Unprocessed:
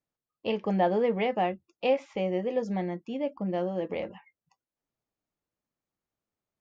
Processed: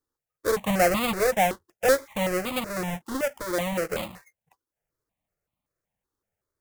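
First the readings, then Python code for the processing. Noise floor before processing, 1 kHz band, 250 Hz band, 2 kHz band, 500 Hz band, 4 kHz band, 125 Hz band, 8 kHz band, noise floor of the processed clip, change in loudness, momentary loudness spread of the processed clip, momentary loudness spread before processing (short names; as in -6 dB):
under -85 dBFS, +4.0 dB, +1.0 dB, +10.5 dB, +2.5 dB, +8.0 dB, +1.5 dB, n/a, under -85 dBFS, +4.0 dB, 9 LU, 8 LU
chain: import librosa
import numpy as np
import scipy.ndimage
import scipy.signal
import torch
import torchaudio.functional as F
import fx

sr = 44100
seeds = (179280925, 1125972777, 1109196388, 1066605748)

y = fx.halfwave_hold(x, sr)
y = fx.phaser_held(y, sr, hz=5.3, low_hz=660.0, high_hz=1600.0)
y = y * librosa.db_to_amplitude(3.0)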